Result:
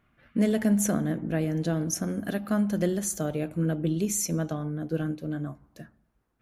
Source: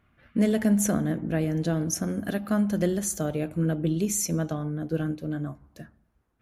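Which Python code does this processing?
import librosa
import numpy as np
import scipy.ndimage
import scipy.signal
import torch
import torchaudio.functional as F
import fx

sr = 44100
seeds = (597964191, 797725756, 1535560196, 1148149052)

y = fx.peak_eq(x, sr, hz=76.0, db=-12.0, octaves=0.34)
y = y * 10.0 ** (-1.0 / 20.0)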